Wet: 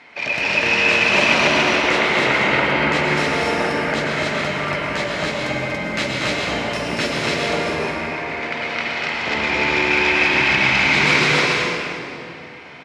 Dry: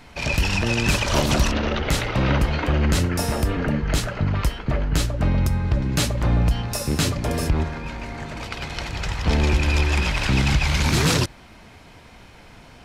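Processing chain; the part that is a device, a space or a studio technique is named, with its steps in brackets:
station announcement (band-pass filter 320–4,400 Hz; parametric band 2,100 Hz +9 dB 0.5 octaves; loudspeakers that aren't time-aligned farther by 81 metres −5 dB, 97 metres −1 dB; convolution reverb RT60 2.6 s, pre-delay 96 ms, DRR −1 dB)

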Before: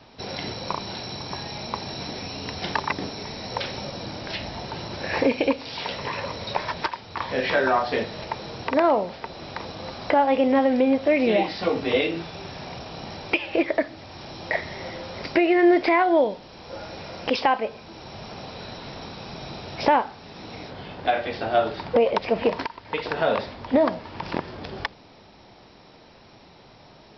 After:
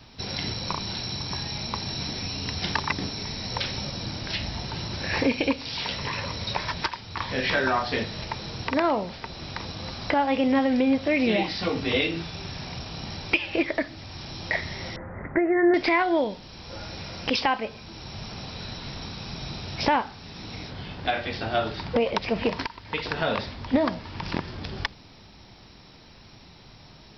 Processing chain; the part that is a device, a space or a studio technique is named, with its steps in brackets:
smiley-face EQ (low-shelf EQ 130 Hz +8.5 dB; parametric band 570 Hz −6.5 dB 1.6 octaves; high-shelf EQ 5,200 Hz +8.5 dB)
0:14.96–0:15.74: Chebyshev low-pass filter 2,000 Hz, order 6

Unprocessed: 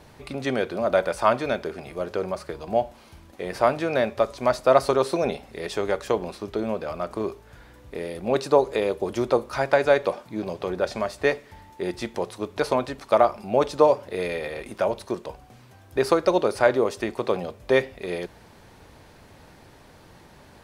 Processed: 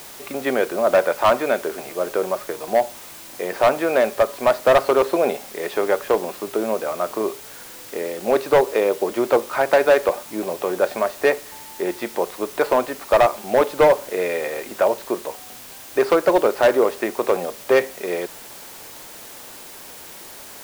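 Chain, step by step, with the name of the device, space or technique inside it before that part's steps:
aircraft radio (band-pass filter 310–2,400 Hz; hard clipping −15.5 dBFS, distortion −12 dB; white noise bed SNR 19 dB)
level +6.5 dB

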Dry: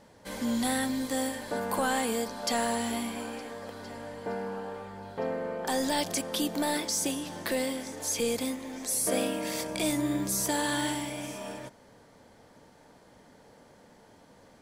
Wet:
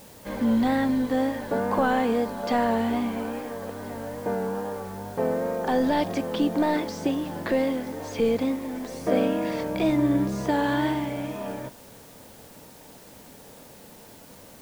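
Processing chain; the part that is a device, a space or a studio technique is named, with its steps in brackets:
cassette deck with a dirty head (head-to-tape spacing loss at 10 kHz 35 dB; tape wow and flutter; white noise bed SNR 25 dB)
level +8.5 dB

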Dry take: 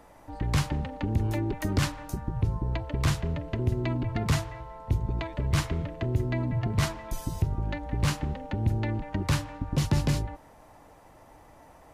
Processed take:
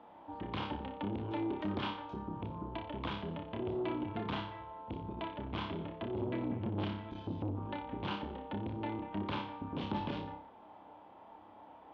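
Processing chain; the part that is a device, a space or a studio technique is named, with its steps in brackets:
0:06.20–0:07.57: graphic EQ with 15 bands 100 Hz +11 dB, 250 Hz +7 dB, 1,000 Hz −6 dB, 10,000 Hz −11 dB
flutter between parallel walls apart 5.1 metres, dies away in 0.39 s
guitar amplifier (tube saturation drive 24 dB, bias 0.3; bass and treble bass −4 dB, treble −12 dB; loudspeaker in its box 100–3,800 Hz, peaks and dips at 140 Hz −9 dB, 210 Hz +7 dB, 320 Hz +4 dB, 900 Hz +7 dB, 1,900 Hz −7 dB, 3,300 Hz +9 dB)
level −5 dB

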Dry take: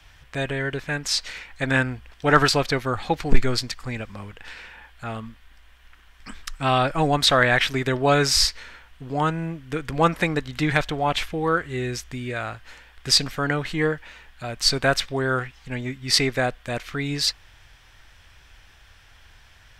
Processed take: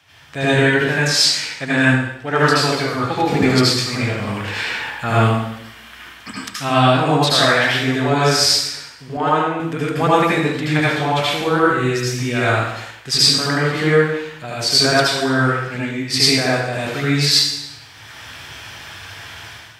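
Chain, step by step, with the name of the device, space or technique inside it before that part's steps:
far laptop microphone (convolution reverb RT60 0.85 s, pre-delay 70 ms, DRR −8 dB; high-pass filter 100 Hz 24 dB per octave; automatic gain control gain up to 12 dB)
0:09.17–0:09.60: bass and treble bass −12 dB, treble −9 dB
level −1 dB

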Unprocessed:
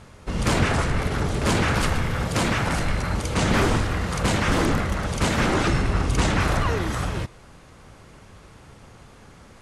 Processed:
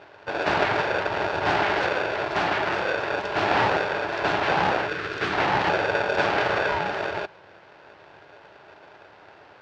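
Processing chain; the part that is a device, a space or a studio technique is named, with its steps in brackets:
ring modulator pedal into a guitar cabinet (ring modulator with a square carrier 510 Hz; loudspeaker in its box 94–4,200 Hz, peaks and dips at 100 Hz +4 dB, 240 Hz −9 dB, 480 Hz −4 dB, 860 Hz +7 dB, 1,500 Hz +4 dB, 3,600 Hz −3 dB)
0:04.88–0:05.33: flat-topped bell 750 Hz −11 dB 1 octave
level −2.5 dB

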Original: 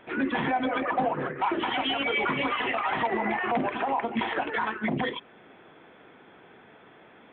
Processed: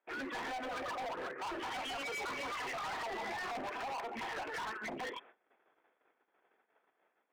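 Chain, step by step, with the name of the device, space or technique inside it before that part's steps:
walkie-talkie (band-pass filter 470–2,400 Hz; hard clipping −33.5 dBFS, distortion −6 dB; noise gate −52 dBFS, range −25 dB)
level −4.5 dB

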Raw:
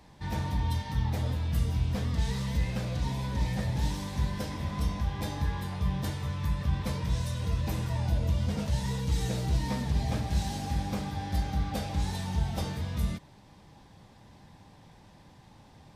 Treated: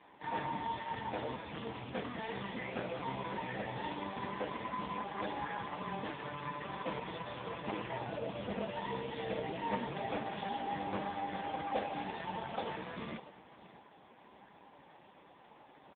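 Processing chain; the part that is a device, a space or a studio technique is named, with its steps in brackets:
satellite phone (band-pass filter 360–3,300 Hz; single-tap delay 603 ms −16.5 dB; level +5.5 dB; AMR narrowband 4.75 kbit/s 8,000 Hz)

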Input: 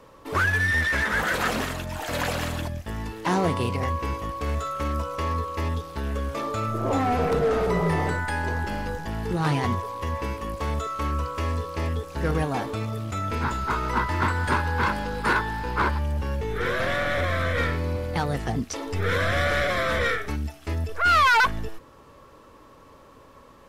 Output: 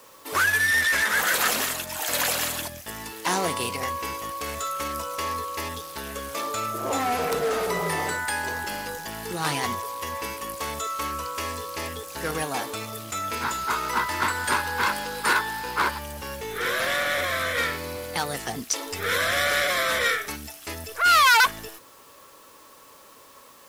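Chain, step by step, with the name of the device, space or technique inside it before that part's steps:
turntable without a phono preamp (RIAA equalisation recording; white noise bed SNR 30 dB)

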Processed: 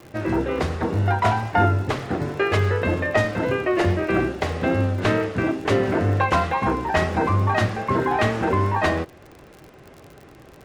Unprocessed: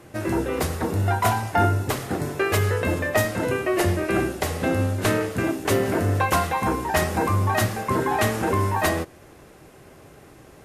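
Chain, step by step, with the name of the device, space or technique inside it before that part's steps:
lo-fi chain (low-pass filter 4,000 Hz 12 dB per octave; tape wow and flutter 28 cents; surface crackle 53 per second −35 dBFS)
level +1.5 dB

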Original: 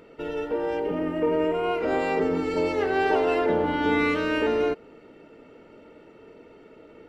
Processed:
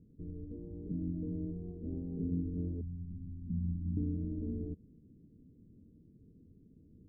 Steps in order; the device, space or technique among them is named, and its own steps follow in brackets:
0:02.81–0:03.97: elliptic band-stop filter 200–4,700 Hz, stop band 50 dB
the neighbour's flat through the wall (low-pass filter 210 Hz 24 dB per octave; parametric band 87 Hz +6 dB)

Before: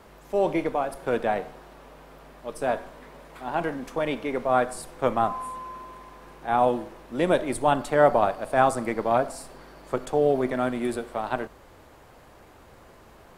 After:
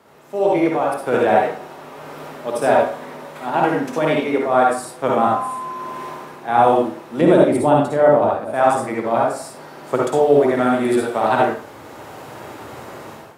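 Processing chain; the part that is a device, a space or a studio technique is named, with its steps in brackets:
far laptop microphone (convolution reverb RT60 0.40 s, pre-delay 51 ms, DRR −2.5 dB; high-pass filter 110 Hz 24 dB per octave; automatic gain control gain up to 14 dB)
0:07.21–0:08.54: tilt shelving filter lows +5.5 dB, about 660 Hz
level −1.5 dB

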